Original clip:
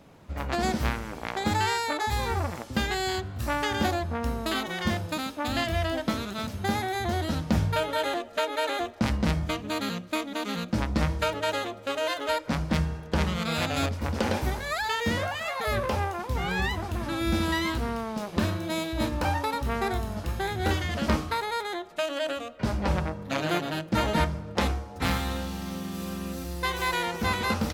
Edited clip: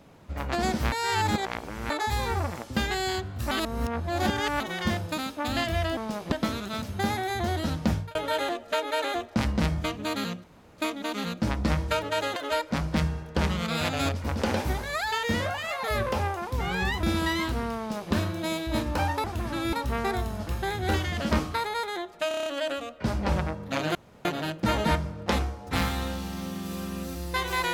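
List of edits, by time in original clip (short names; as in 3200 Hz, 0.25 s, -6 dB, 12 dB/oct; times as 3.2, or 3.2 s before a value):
0.92–1.9 reverse
3.51–4.6 reverse
7.51–7.8 fade out
10.09 insert room tone 0.34 s
11.67–12.13 cut
16.8–17.29 move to 19.5
18.04–18.39 copy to 5.97
22.05 stutter 0.03 s, 7 plays
23.54 insert room tone 0.30 s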